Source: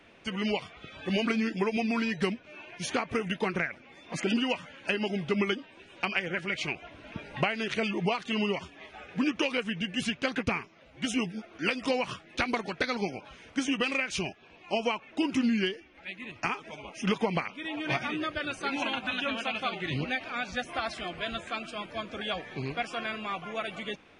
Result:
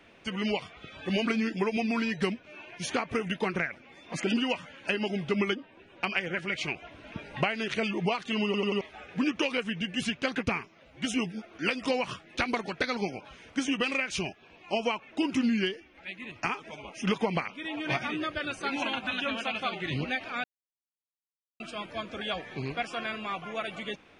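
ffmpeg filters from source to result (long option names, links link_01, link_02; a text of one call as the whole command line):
ffmpeg -i in.wav -filter_complex "[0:a]asplit=3[link_01][link_02][link_03];[link_01]afade=type=out:start_time=5.53:duration=0.02[link_04];[link_02]lowpass=frequency=1600:poles=1,afade=type=in:start_time=5.53:duration=0.02,afade=type=out:start_time=6.02:duration=0.02[link_05];[link_03]afade=type=in:start_time=6.02:duration=0.02[link_06];[link_04][link_05][link_06]amix=inputs=3:normalize=0,asplit=7[link_07][link_08][link_09][link_10][link_11][link_12][link_13];[link_07]atrim=end=8.542[link_14];[link_08]atrim=start=8.448:end=8.542[link_15];[link_09]atrim=start=8.448:end=8.542[link_16];[link_10]atrim=start=8.448:end=8.542[link_17];[link_11]atrim=start=8.808:end=20.44,asetpts=PTS-STARTPTS,afade=type=out:start_time=11.628:duration=0.004:curve=hsin[link_18];[link_12]atrim=start=20.44:end=21.6,asetpts=PTS-STARTPTS,volume=0[link_19];[link_13]atrim=start=21.6,asetpts=PTS-STARTPTS,afade=type=in:duration=0.004:curve=hsin[link_20];[link_14][link_15]acrossfade=duration=0.004:curve1=hsin:curve2=hsin[link_21];[link_21][link_16]acrossfade=duration=0.004:curve1=hsin:curve2=hsin[link_22];[link_22][link_17]acrossfade=duration=0.004:curve1=hsin:curve2=hsin[link_23];[link_18][link_19][link_20]concat=n=3:v=0:a=1[link_24];[link_23][link_24]acrossfade=duration=0.004:curve1=hsin:curve2=hsin" out.wav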